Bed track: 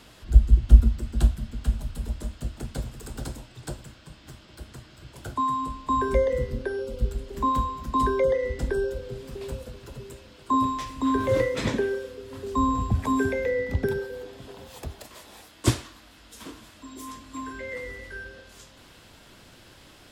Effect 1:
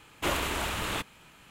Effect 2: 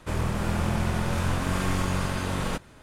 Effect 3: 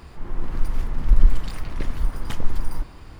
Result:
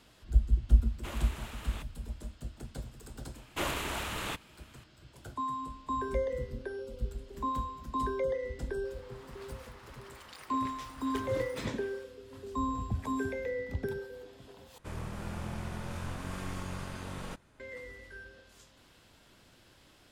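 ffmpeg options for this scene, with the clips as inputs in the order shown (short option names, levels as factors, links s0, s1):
-filter_complex "[1:a]asplit=2[s0][s1];[0:a]volume=0.335[s2];[3:a]highpass=810[s3];[s2]asplit=2[s4][s5];[s4]atrim=end=14.784[s6];[2:a]atrim=end=2.82,asetpts=PTS-STARTPTS,volume=0.237[s7];[s5]atrim=start=17.596[s8];[s0]atrim=end=1.5,asetpts=PTS-STARTPTS,volume=0.188,afade=t=in:d=0.004:c=hsin,afade=t=out:st=1.496:d=0.004:c=hsin,adelay=810[s9];[s1]atrim=end=1.5,asetpts=PTS-STARTPTS,volume=0.596,afade=t=in:d=0.004:c=hsin,afade=t=out:st=1.496:d=0.004:c=hsin,adelay=3340[s10];[s3]atrim=end=3.19,asetpts=PTS-STARTPTS,volume=0.376,afade=t=in:d=0.004:c=hsin,afade=t=out:st=3.186:d=0.004:c=hsin,adelay=8850[s11];[s6][s7]acrossfade=d=0.004:c1=hsin:c2=hsin[s12];[s12][s8]acrossfade=d=0.004:c1=hsin:c2=hsin[s13];[s13][s9][s10][s11]amix=inputs=4:normalize=0"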